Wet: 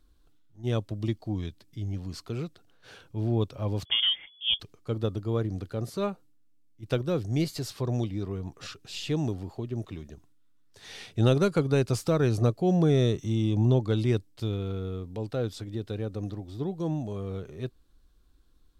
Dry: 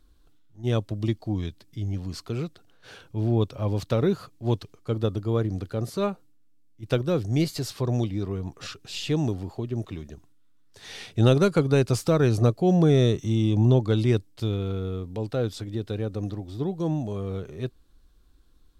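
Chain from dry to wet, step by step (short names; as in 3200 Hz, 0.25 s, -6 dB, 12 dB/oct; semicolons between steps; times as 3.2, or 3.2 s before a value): 3.85–4.6 inverted band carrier 3400 Hz; gain -3.5 dB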